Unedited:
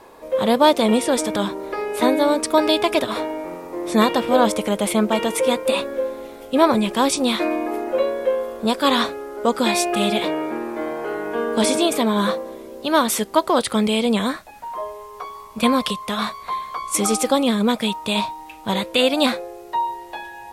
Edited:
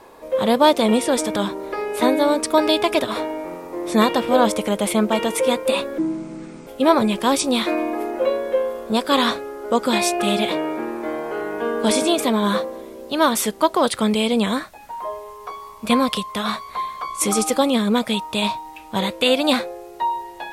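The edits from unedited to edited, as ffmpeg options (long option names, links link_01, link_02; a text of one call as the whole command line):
ffmpeg -i in.wav -filter_complex "[0:a]asplit=3[link_01][link_02][link_03];[link_01]atrim=end=5.984[link_04];[link_02]atrim=start=5.98:end=6.4,asetpts=PTS-STARTPTS,asetrate=26901,aresample=44100[link_05];[link_03]atrim=start=6.396[link_06];[link_04][link_05]acrossfade=duration=0.004:curve1=hsin:curve2=hsin[link_07];[link_07][link_06]acrossfade=duration=0.004:curve1=hsin:curve2=hsin" out.wav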